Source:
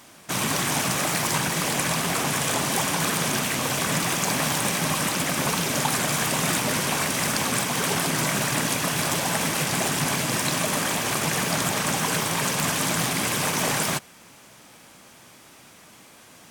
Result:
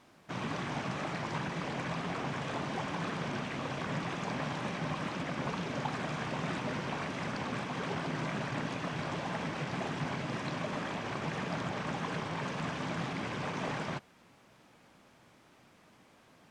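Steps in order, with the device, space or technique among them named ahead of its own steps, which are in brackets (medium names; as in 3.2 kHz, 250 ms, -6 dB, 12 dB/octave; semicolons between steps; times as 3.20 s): low-pass 10 kHz 12 dB/octave; cassette deck with a dirty head (tape spacing loss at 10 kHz 21 dB; wow and flutter; white noise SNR 30 dB); distance through air 55 m; trim -8 dB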